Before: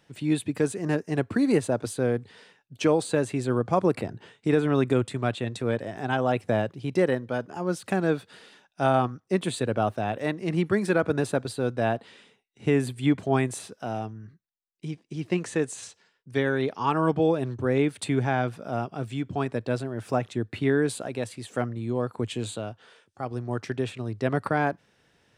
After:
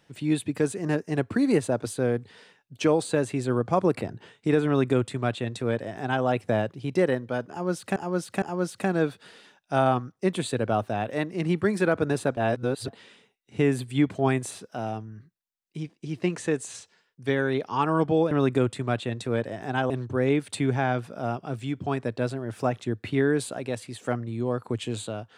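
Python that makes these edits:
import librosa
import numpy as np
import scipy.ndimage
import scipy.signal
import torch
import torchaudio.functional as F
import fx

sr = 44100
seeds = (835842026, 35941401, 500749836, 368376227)

y = fx.edit(x, sr, fx.duplicate(start_s=4.66, length_s=1.59, to_s=17.39),
    fx.repeat(start_s=7.5, length_s=0.46, count=3),
    fx.reverse_span(start_s=11.45, length_s=0.51), tone=tone)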